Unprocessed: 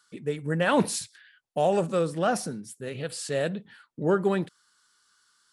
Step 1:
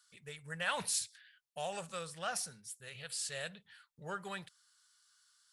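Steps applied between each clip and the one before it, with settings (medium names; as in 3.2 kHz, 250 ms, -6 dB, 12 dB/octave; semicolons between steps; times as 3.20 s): amplifier tone stack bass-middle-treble 10-0-10; trim -2 dB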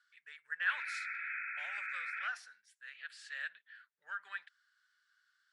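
ladder band-pass 1.8 kHz, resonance 65%; painted sound noise, 0.70–2.28 s, 1.3–2.6 kHz -49 dBFS; trim +7.5 dB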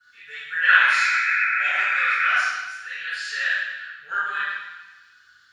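reverberation RT60 1.0 s, pre-delay 3 ms, DRR -20 dB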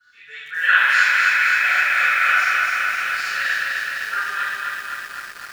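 bit-crushed delay 256 ms, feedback 80%, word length 7-bit, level -3 dB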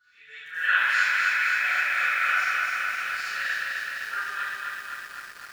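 reverse echo 91 ms -15.5 dB; trim -7 dB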